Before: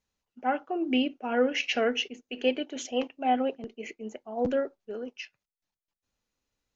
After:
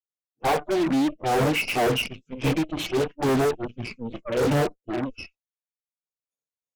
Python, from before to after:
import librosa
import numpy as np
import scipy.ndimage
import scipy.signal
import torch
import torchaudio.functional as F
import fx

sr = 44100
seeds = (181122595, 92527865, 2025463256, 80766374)

y = scipy.signal.sosfilt(scipy.signal.butter(2, 76.0, 'highpass', fs=sr, output='sos'), x)
y = fx.noise_reduce_blind(y, sr, reduce_db=29)
y = fx.curve_eq(y, sr, hz=(100.0, 340.0, 890.0, 1500.0, 2500.0, 3500.0, 6600.0), db=(0, 8, 15, -3, 6, -8, 12))
y = fx.pitch_keep_formants(y, sr, semitones=-11.0)
y = fx.transient(y, sr, attack_db=-3, sustain_db=4)
y = fx.cheby_harmonics(y, sr, harmonics=(3, 6), levels_db=(-19, -14), full_scale_db=-21.5)
y = y * 10.0 ** (1.5 / 20.0)